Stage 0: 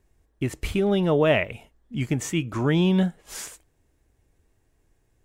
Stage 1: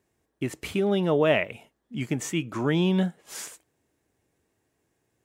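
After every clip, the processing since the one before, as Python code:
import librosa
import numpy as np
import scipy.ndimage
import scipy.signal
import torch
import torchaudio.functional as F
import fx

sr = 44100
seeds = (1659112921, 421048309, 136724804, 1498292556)

y = scipy.signal.sosfilt(scipy.signal.butter(2, 150.0, 'highpass', fs=sr, output='sos'), x)
y = y * librosa.db_to_amplitude(-1.5)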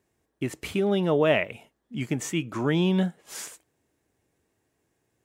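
y = x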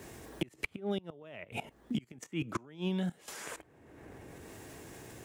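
y = fx.level_steps(x, sr, step_db=17)
y = fx.gate_flip(y, sr, shuts_db=-26.0, range_db=-26)
y = fx.band_squash(y, sr, depth_pct=100)
y = y * librosa.db_to_amplitude(5.5)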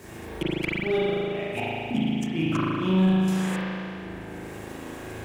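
y = fx.rev_spring(x, sr, rt60_s=2.6, pass_ms=(37,), chirp_ms=30, drr_db=-8.5)
y = fx.leveller(y, sr, passes=1)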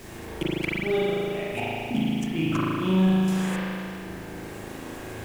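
y = fx.dmg_noise_colour(x, sr, seeds[0], colour='pink', level_db=-49.0)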